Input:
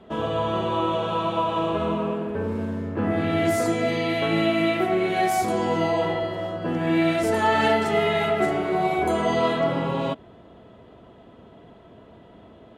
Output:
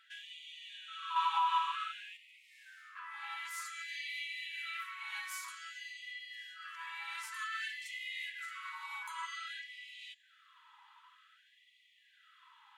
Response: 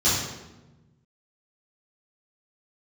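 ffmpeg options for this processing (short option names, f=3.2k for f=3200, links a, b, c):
-filter_complex "[0:a]acompressor=threshold=-29dB:ratio=6,asplit=2[a][b];[b]lowpass=f=7.8k:t=q:w=8.3[c];[1:a]atrim=start_sample=2205,lowshelf=f=110:g=10.5[d];[c][d]afir=irnorm=-1:irlink=0,volume=-39.5dB[e];[a][e]amix=inputs=2:normalize=0,asettb=1/sr,asplit=3[f][g][h];[f]atrim=end=1.164[i];[g]atrim=start=1.16:end=2.17,asetpts=PTS-STARTPTS,afade=t=in:d=0.004:c=qsin,afade=t=out:st=1.006:d=0.004:c=qsin,acontrast=58[j];[h]atrim=start=2.166[k];[i][j]acrossfade=d=0.004:c1=hsin:c2=qsin[l];[l][k]acrossfade=d=0.004:c1=qsin:c2=hsin,afftfilt=real='re*gte(b*sr/1024,810*pow(1900/810,0.5+0.5*sin(2*PI*0.53*pts/sr)))':imag='im*gte(b*sr/1024,810*pow(1900/810,0.5+0.5*sin(2*PI*0.53*pts/sr)))':win_size=1024:overlap=0.75,volume=-2dB"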